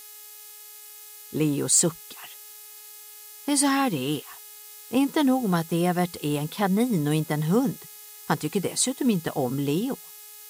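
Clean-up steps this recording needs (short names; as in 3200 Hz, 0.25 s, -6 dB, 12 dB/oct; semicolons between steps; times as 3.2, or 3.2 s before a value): clip repair -11 dBFS; de-hum 420.7 Hz, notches 21; noise print and reduce 25 dB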